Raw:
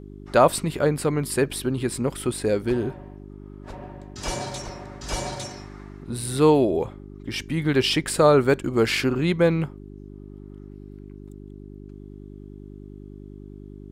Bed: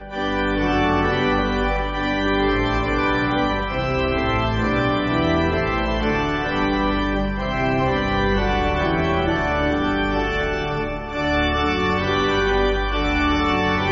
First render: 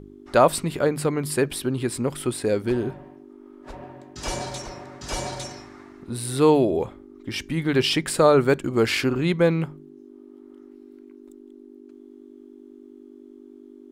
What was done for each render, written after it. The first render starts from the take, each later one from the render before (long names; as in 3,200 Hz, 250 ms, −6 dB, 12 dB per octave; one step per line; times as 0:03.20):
hum removal 50 Hz, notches 4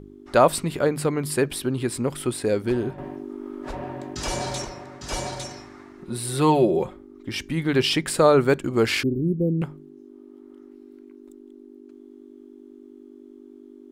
0:02.98–0:04.65: envelope flattener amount 50%
0:05.98–0:06.97: comb filter 5.5 ms, depth 58%
0:09.03–0:09.62: inverse Chebyshev band-stop filter 1,600–4,500 Hz, stop band 80 dB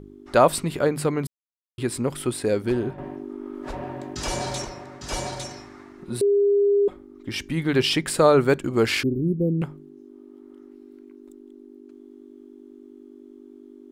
0:01.27–0:01.78: silence
0:02.79–0:03.55: bass and treble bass 0 dB, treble −4 dB
0:06.21–0:06.88: beep over 404 Hz −15.5 dBFS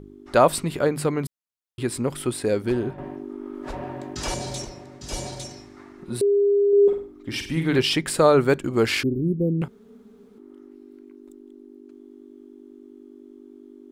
0:04.34–0:05.77: parametric band 1,300 Hz −9 dB 1.9 octaves
0:06.68–0:07.79: flutter between parallel walls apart 8.5 metres, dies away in 0.43 s
0:09.68–0:10.38: fill with room tone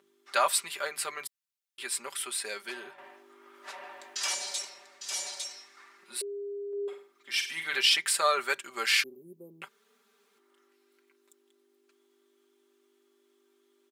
high-pass filter 1,500 Hz 12 dB per octave
comb filter 5.1 ms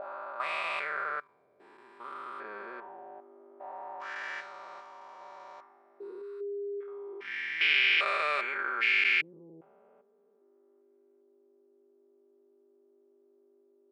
spectrum averaged block by block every 400 ms
envelope-controlled low-pass 560–2,400 Hz up, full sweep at −32.5 dBFS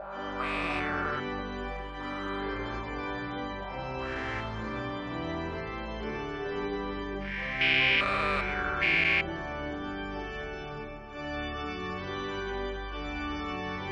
mix in bed −15.5 dB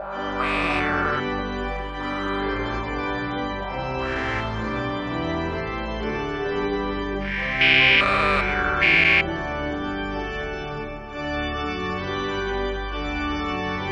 level +8.5 dB